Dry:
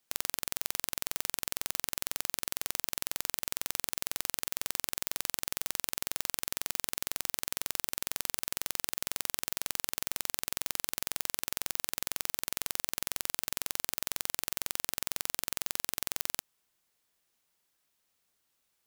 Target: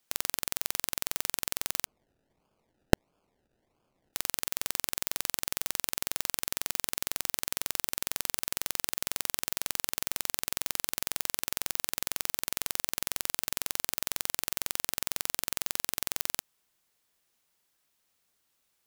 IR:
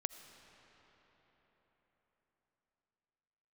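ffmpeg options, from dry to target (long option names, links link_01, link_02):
-filter_complex "[0:a]asplit=3[link_01][link_02][link_03];[link_01]afade=type=out:start_time=1.85:duration=0.02[link_04];[link_02]acrusher=samples=32:mix=1:aa=0.000001:lfo=1:lforange=19.2:lforate=1.5,afade=type=in:start_time=1.85:duration=0.02,afade=type=out:start_time=4.13:duration=0.02[link_05];[link_03]afade=type=in:start_time=4.13:duration=0.02[link_06];[link_04][link_05][link_06]amix=inputs=3:normalize=0,volume=2dB"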